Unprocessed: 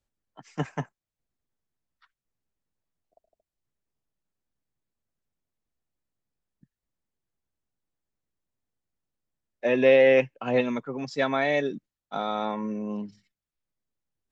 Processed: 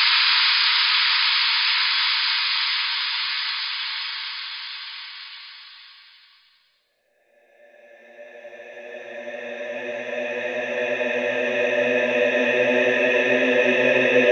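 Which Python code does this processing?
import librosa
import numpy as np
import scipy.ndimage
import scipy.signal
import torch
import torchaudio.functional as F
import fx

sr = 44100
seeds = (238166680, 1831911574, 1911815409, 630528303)

y = fx.spec_paint(x, sr, seeds[0], shape='noise', start_s=7.46, length_s=1.72, low_hz=880.0, high_hz=5100.0, level_db=-29.0)
y = fx.paulstretch(y, sr, seeds[1], factor=24.0, window_s=0.5, from_s=9.12)
y = fx.tilt_shelf(y, sr, db=-6.5, hz=860.0)
y = F.gain(torch.from_numpy(y), 7.0).numpy()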